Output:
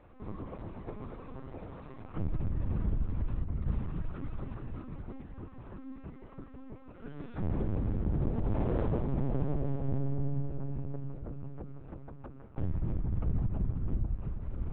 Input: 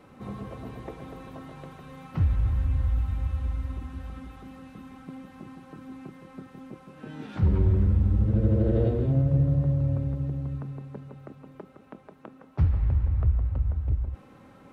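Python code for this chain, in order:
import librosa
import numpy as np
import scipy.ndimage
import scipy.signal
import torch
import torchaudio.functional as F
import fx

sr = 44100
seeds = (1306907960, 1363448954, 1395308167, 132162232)

p1 = fx.high_shelf(x, sr, hz=2000.0, db=-8.0)
p2 = fx.over_compress(p1, sr, threshold_db=-32.0, ratio=-0.5, at=(3.42, 4.61))
p3 = np.clip(p2, -10.0 ** (-26.0 / 20.0), 10.0 ** (-26.0 / 20.0))
p4 = p3 + fx.echo_filtered(p3, sr, ms=665, feedback_pct=46, hz=1000.0, wet_db=-5, dry=0)
p5 = fx.lpc_vocoder(p4, sr, seeds[0], excitation='pitch_kept', order=10)
y = p5 * librosa.db_to_amplitude(-3.0)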